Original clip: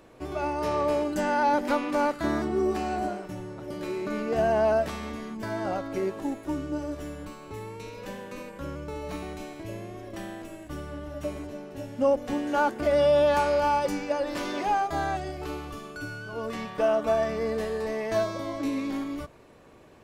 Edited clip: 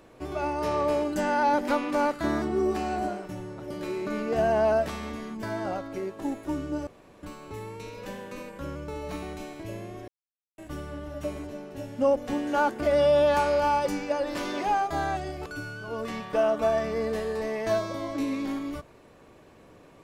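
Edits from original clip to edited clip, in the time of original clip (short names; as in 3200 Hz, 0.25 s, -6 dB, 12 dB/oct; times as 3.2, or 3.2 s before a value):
5.49–6.19 fade out, to -6.5 dB
6.87–7.23 room tone
10.08–10.58 mute
15.46–15.91 cut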